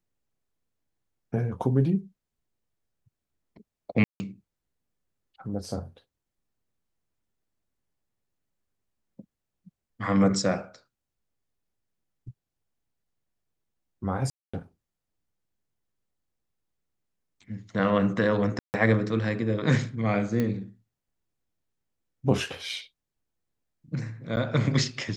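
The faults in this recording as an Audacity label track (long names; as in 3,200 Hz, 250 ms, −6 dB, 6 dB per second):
4.040000	4.200000	drop-out 160 ms
14.300000	14.540000	drop-out 235 ms
18.590000	18.740000	drop-out 149 ms
20.400000	20.400000	click −15 dBFS
24.360000	24.370000	drop-out 9.2 ms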